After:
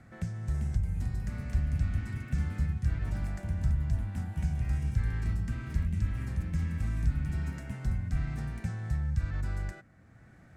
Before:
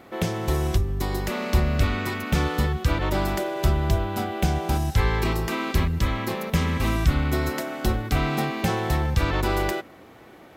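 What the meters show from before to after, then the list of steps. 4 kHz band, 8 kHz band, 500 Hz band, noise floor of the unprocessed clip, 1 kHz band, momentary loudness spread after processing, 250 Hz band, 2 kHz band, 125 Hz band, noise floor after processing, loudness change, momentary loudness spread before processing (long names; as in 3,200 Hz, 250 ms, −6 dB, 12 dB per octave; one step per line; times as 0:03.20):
below −20 dB, −17.0 dB, −24.5 dB, −48 dBFS, −23.0 dB, 5 LU, −12.0 dB, −16.5 dB, −5.5 dB, −56 dBFS, −8.0 dB, 4 LU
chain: drawn EQ curve 130 Hz 0 dB, 220 Hz −8 dB, 380 Hz −23 dB, 670 Hz −17 dB, 1,000 Hz −22 dB, 1,600 Hz −8 dB, 3,200 Hz −23 dB, 4,600 Hz −16 dB, 8,200 Hz −9 dB, 15,000 Hz −29 dB
delay with pitch and tempo change per echo 429 ms, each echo +3 semitones, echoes 2, each echo −6 dB
multiband upward and downward compressor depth 40%
level −6.5 dB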